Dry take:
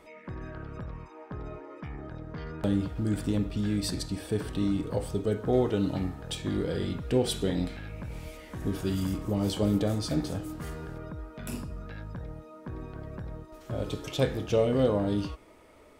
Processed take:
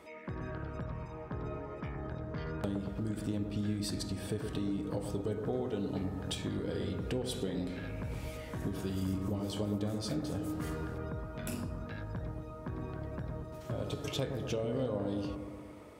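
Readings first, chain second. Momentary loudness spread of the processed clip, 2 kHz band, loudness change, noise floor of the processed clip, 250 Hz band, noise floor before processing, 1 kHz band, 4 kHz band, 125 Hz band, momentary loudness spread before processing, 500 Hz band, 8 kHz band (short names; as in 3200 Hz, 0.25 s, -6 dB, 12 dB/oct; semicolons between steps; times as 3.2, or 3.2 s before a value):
7 LU, -4.0 dB, -6.5 dB, -47 dBFS, -6.0 dB, -52 dBFS, -5.0 dB, -5.5 dB, -5.0 dB, 15 LU, -7.5 dB, -5.0 dB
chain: HPF 61 Hz; compressor 4:1, threshold -34 dBFS, peak gain reduction 12.5 dB; on a send: analogue delay 0.116 s, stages 1024, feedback 68%, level -7 dB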